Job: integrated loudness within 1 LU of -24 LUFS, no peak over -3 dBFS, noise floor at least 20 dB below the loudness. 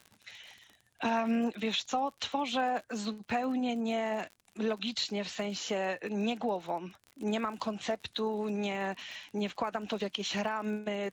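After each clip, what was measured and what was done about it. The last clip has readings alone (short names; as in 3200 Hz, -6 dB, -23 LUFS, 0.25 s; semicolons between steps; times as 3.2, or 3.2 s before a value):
ticks 43/s; loudness -33.5 LUFS; peak -20.0 dBFS; loudness target -24.0 LUFS
-> de-click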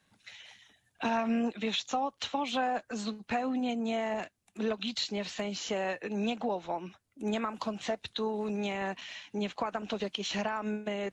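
ticks 0/s; loudness -33.5 LUFS; peak -20.0 dBFS; loudness target -24.0 LUFS
-> gain +9.5 dB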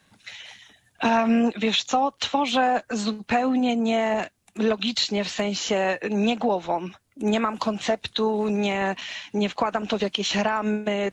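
loudness -24.0 LUFS; peak -10.5 dBFS; noise floor -64 dBFS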